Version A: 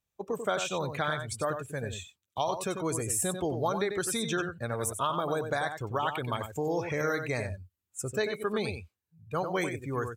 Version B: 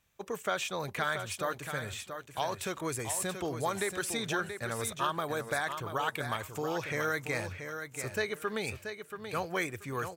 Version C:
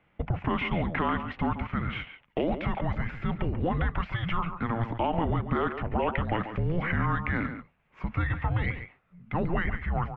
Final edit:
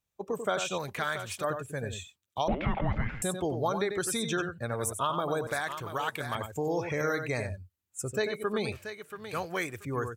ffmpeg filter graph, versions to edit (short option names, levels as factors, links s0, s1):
-filter_complex "[1:a]asplit=3[s0][s1][s2];[0:a]asplit=5[s3][s4][s5][s6][s7];[s3]atrim=end=0.782[s8];[s0]atrim=start=0.778:end=1.442[s9];[s4]atrim=start=1.438:end=2.482[s10];[2:a]atrim=start=2.478:end=3.222[s11];[s5]atrim=start=3.218:end=5.472[s12];[s1]atrim=start=5.468:end=6.352[s13];[s6]atrim=start=6.348:end=8.722[s14];[s2]atrim=start=8.718:end=9.852[s15];[s7]atrim=start=9.848[s16];[s8][s9]acrossfade=d=0.004:c1=hsin:c2=hsin[s17];[s17][s10]acrossfade=d=0.004:c1=hsin:c2=hsin[s18];[s18][s11]acrossfade=d=0.004:c1=hsin:c2=hsin[s19];[s19][s12]acrossfade=d=0.004:c1=hsin:c2=hsin[s20];[s20][s13]acrossfade=d=0.004:c1=hsin:c2=hsin[s21];[s21][s14]acrossfade=d=0.004:c1=hsin:c2=hsin[s22];[s22][s15]acrossfade=d=0.004:c1=hsin:c2=hsin[s23];[s23][s16]acrossfade=d=0.004:c1=hsin:c2=hsin"